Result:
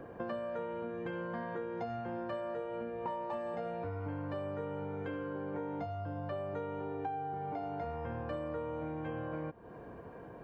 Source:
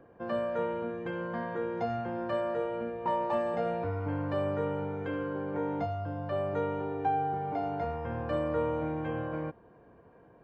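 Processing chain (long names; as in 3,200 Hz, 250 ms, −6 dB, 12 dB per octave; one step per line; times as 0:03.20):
downward compressor 6 to 1, threshold −46 dBFS, peak gain reduction 19 dB
level +8.5 dB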